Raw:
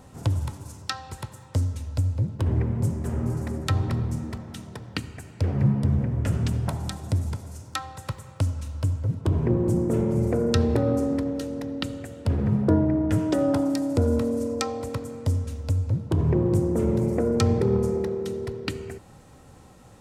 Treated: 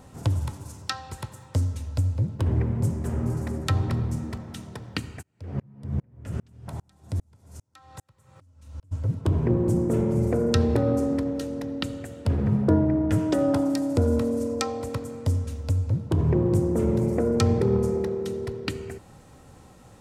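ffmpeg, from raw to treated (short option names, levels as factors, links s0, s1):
-filter_complex "[0:a]asplit=3[s0][s1][s2];[s0]afade=t=out:st=5.21:d=0.02[s3];[s1]aeval=exprs='val(0)*pow(10,-39*if(lt(mod(-2.5*n/s,1),2*abs(-2.5)/1000),1-mod(-2.5*n/s,1)/(2*abs(-2.5)/1000),(mod(-2.5*n/s,1)-2*abs(-2.5)/1000)/(1-2*abs(-2.5)/1000))/20)':c=same,afade=t=in:st=5.21:d=0.02,afade=t=out:st=8.91:d=0.02[s4];[s2]afade=t=in:st=8.91:d=0.02[s5];[s3][s4][s5]amix=inputs=3:normalize=0"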